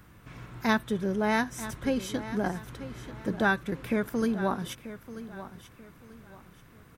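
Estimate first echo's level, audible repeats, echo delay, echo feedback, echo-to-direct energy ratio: -14.0 dB, 3, 937 ms, 31%, -13.5 dB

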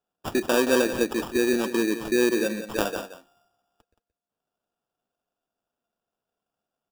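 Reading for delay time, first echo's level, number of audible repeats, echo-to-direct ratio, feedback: 174 ms, -11.0 dB, 1, -11.0 dB, no regular repeats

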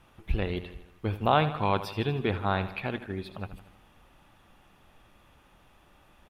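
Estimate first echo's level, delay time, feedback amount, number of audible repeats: -13.5 dB, 79 ms, 57%, 5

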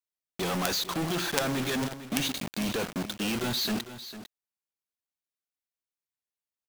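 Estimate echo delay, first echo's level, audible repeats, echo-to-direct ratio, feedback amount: 451 ms, -13.0 dB, 1, -13.0 dB, no regular repeats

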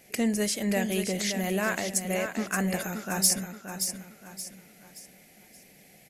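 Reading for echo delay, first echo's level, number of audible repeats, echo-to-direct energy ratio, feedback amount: 575 ms, -7.5 dB, 4, -7.0 dB, 37%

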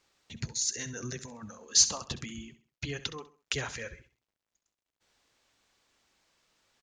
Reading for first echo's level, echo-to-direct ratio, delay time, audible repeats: -14.5 dB, -14.0 dB, 66 ms, 3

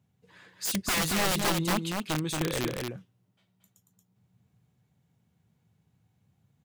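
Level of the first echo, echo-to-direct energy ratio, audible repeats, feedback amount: -3.5 dB, -3.5 dB, 1, no regular repeats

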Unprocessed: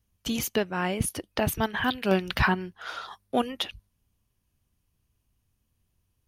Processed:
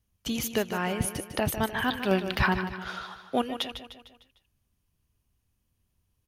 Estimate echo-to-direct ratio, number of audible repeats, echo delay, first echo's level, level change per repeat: -9.0 dB, 5, 151 ms, -10.0 dB, -6.0 dB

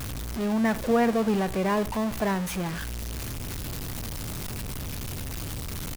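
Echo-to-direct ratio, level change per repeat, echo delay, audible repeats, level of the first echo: -18.5 dB, -16.0 dB, 81 ms, 1, -18.5 dB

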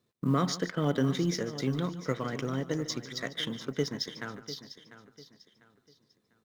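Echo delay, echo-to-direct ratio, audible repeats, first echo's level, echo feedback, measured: 147 ms, -11.5 dB, 5, -15.5 dB, no regular repeats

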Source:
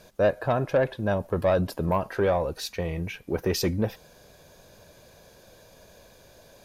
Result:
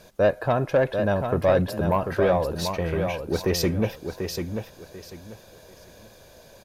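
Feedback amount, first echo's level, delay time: 25%, -6.5 dB, 741 ms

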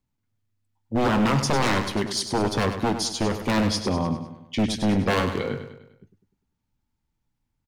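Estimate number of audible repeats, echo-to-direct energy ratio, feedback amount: 5, -8.5 dB, 49%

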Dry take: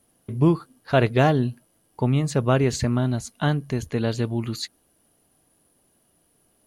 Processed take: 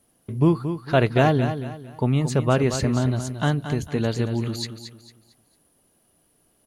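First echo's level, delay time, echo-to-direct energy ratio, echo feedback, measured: -9.5 dB, 226 ms, -9.0 dB, 33%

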